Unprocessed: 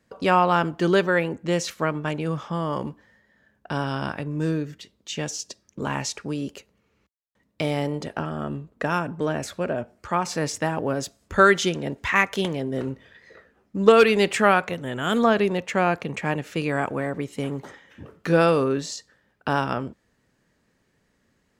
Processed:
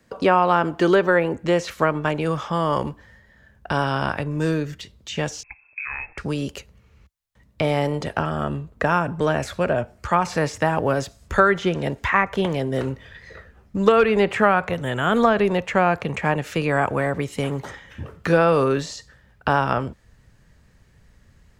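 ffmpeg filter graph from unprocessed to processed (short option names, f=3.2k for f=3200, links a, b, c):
-filter_complex "[0:a]asettb=1/sr,asplit=3[a][b][c];[a]atrim=end=5.434[d];[b]atrim=start=5.43:end=6.18,asetpts=PTS-STARTPTS,afade=t=in:d=0.004:c=qsin,afade=t=out:st=0.746:d=0.004:c=qsin,lowshelf=f=140:g=11.5,acompressor=threshold=-32dB:ratio=5:attack=3.2:release=140:knee=1:detection=peak,lowpass=f=2.3k:t=q:w=0.5098,lowpass=f=2.3k:t=q:w=0.6013,lowpass=f=2.3k:t=q:w=0.9,lowpass=f=2.3k:t=q:w=2.563,afreqshift=-2700[e];[c]atrim=start=6.176[f];[d][e]acrossfade=d=0.004:c1=hsin:c2=qsin[g];[g][f]acrossfade=d=0.004:c1=qsin:c2=hsin,acrossover=split=3000[h][i];[i]acompressor=threshold=-41dB:ratio=4:attack=1:release=60[j];[h][j]amix=inputs=2:normalize=0,asubboost=boost=7.5:cutoff=100,acrossover=split=240|1600[k][l][m];[k]acompressor=threshold=-40dB:ratio=4[n];[l]acompressor=threshold=-21dB:ratio=4[o];[m]acompressor=threshold=-38dB:ratio=4[p];[n][o][p]amix=inputs=3:normalize=0,volume=7.5dB"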